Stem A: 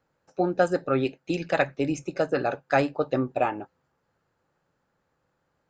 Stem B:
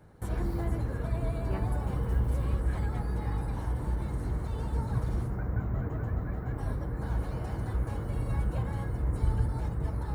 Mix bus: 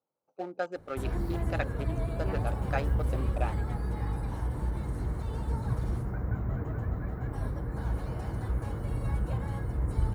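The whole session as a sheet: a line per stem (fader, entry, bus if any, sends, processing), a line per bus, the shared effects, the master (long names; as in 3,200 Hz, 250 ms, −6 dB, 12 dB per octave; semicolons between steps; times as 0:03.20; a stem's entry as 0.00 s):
−8.0 dB, 0.00 s, no send, adaptive Wiener filter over 25 samples; high-pass filter 580 Hz 6 dB per octave
−0.5 dB, 0.75 s, no send, no processing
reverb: not used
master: no processing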